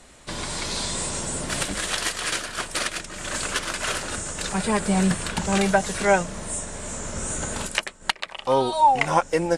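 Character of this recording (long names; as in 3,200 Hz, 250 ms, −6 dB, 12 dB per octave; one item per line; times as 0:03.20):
background noise floor −48 dBFS
spectral slope −3.0 dB per octave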